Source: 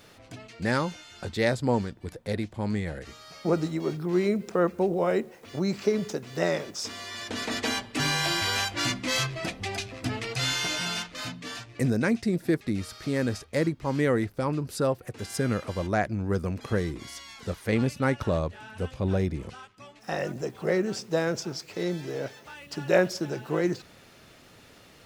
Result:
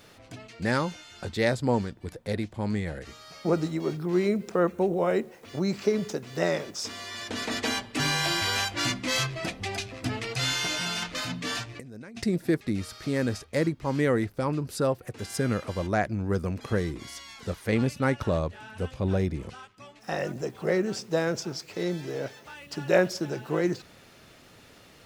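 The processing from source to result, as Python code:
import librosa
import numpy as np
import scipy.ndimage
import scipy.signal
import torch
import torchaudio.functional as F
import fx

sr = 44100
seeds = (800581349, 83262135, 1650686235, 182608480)

y = fx.notch(x, sr, hz=4900.0, q=6.0, at=(4.6, 5.15))
y = fx.over_compress(y, sr, threshold_db=-37.0, ratio=-1.0, at=(11.02, 12.24))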